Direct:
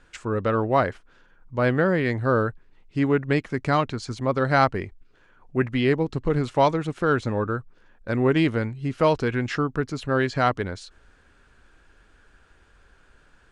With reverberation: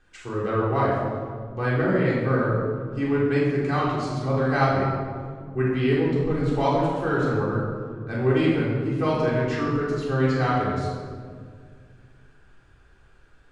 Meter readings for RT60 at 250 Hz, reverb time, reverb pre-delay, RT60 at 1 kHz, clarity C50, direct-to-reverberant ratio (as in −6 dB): 2.7 s, 2.0 s, 3 ms, 1.7 s, 0.0 dB, −7.5 dB